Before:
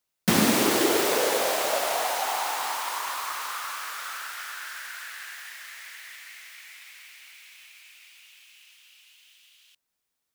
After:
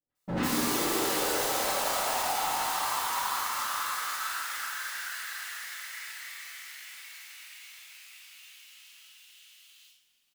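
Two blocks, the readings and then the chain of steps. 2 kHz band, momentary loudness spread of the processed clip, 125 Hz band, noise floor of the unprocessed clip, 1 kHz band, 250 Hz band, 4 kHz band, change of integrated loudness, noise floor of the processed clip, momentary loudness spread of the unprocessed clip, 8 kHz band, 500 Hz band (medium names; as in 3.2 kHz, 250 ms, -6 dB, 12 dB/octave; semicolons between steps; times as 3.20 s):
-3.0 dB, 20 LU, no reading, -81 dBFS, -1.5 dB, -7.0 dB, -3.0 dB, -4.0 dB, -70 dBFS, 22 LU, -2.0 dB, -7.5 dB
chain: dynamic bell 950 Hz, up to +4 dB, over -40 dBFS, Q 1.9; doubling 46 ms -4 dB; three bands offset in time lows, mids, highs 90/150 ms, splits 620/2800 Hz; overload inside the chain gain 28.5 dB; two-slope reverb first 0.39 s, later 2.8 s, from -18 dB, DRR -9 dB; trim -8.5 dB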